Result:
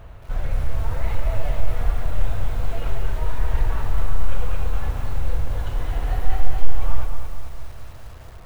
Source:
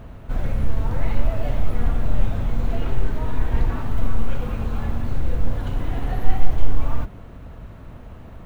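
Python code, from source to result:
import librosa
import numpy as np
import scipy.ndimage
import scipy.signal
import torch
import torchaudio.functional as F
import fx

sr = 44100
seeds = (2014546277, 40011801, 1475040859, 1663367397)

p1 = fx.peak_eq(x, sr, hz=230.0, db=-14.0, octaves=1.1)
p2 = np.clip(p1, -10.0 ** (-11.5 / 20.0), 10.0 ** (-11.5 / 20.0))
p3 = p1 + F.gain(torch.from_numpy(p2), -9.0).numpy()
p4 = fx.echo_crushed(p3, sr, ms=221, feedback_pct=55, bits=7, wet_db=-6.0)
y = F.gain(torch.from_numpy(p4), -3.0).numpy()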